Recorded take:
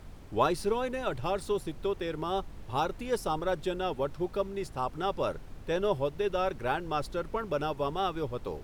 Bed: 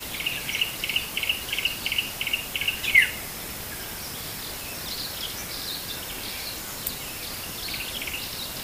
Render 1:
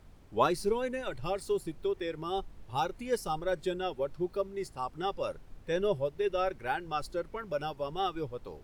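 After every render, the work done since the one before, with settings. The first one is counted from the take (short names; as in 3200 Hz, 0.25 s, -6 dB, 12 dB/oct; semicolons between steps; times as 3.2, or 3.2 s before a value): noise print and reduce 8 dB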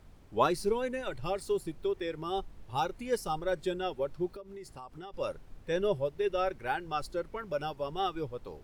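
4.27–5.14 compressor 10:1, threshold -41 dBFS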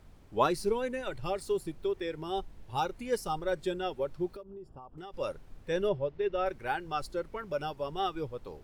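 2.08–2.77 notch 1200 Hz, Q 11; 4.43–4.98 running mean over 21 samples; 5.89–6.46 air absorption 180 m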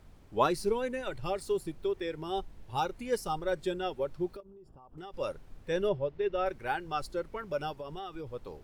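4.4–4.91 compressor, threshold -50 dBFS; 7.76–8.27 compressor 12:1, threshold -36 dBFS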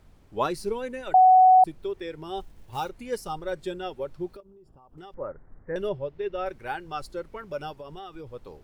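1.14–1.64 bleep 745 Hz -11.5 dBFS; 2.4–2.9 block floating point 5-bit; 5.14–5.76 steep low-pass 2000 Hz 72 dB/oct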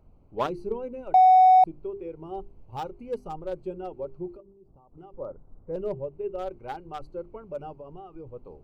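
Wiener smoothing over 25 samples; notches 50/100/150/200/250/300/350/400 Hz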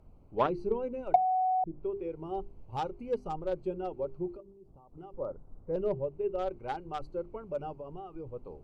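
treble ducked by the level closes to 360 Hz, closed at -16 dBFS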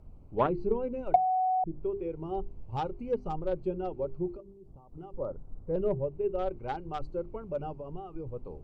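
treble ducked by the level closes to 2800 Hz, closed at -26 dBFS; low shelf 240 Hz +7 dB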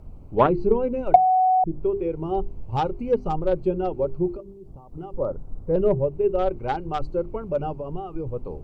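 gain +9 dB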